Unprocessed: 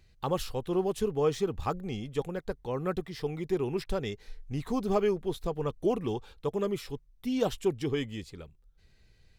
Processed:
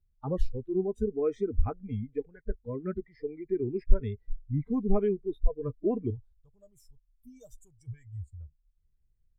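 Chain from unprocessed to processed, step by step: 6.10–8.41 s: FFT filter 100 Hz 0 dB, 280 Hz -19 dB, 1 kHz -10 dB, 1.7 kHz -10 dB, 2.6 kHz -12 dB, 7.7 kHz +9 dB; spectral noise reduction 24 dB; tilt EQ -4.5 dB/octave; trim -6.5 dB

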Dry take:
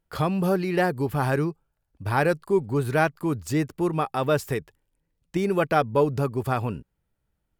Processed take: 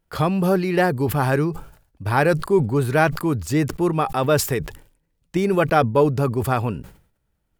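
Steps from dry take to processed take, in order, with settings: decay stretcher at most 110 dB/s; trim +4 dB

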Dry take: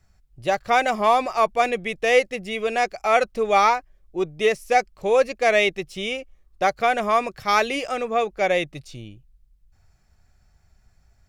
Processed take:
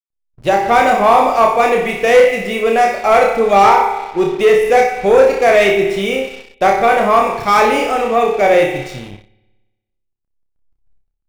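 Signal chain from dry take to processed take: hysteresis with a dead band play -43 dBFS; flutter echo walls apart 5.2 m, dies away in 0.47 s; spring tank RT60 1.2 s, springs 58 ms, chirp 40 ms, DRR 8 dB; waveshaping leveller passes 2; dynamic bell 4 kHz, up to -7 dB, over -29 dBFS, Q 0.71; trim +1.5 dB

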